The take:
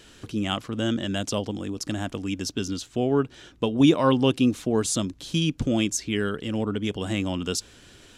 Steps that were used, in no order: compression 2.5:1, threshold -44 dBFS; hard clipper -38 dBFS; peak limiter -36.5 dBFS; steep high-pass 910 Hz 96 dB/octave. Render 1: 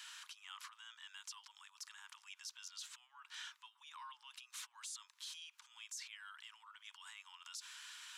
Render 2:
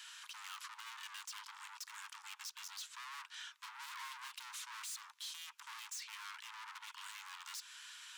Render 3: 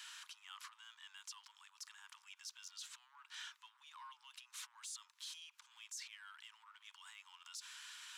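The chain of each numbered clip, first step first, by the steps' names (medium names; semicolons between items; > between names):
peak limiter > steep high-pass > compression > hard clipper; hard clipper > steep high-pass > compression > peak limiter; peak limiter > hard clipper > compression > steep high-pass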